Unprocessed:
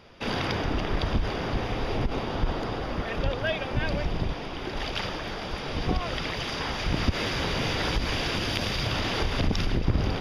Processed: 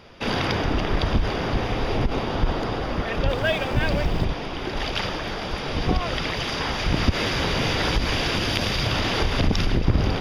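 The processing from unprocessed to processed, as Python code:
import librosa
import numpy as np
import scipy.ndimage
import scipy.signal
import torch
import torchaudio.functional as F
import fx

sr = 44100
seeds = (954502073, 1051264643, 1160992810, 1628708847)

y = fx.law_mismatch(x, sr, coded='mu', at=(3.28, 4.24), fade=0.02)
y = F.gain(torch.from_numpy(y), 4.5).numpy()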